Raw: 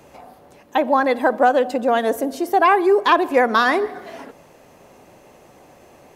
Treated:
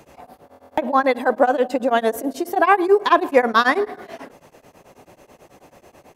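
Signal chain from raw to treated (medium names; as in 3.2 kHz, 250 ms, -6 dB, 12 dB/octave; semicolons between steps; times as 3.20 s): buffer glitch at 0.45 s, samples 1024, times 13; tremolo of two beating tones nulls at 9.2 Hz; trim +2.5 dB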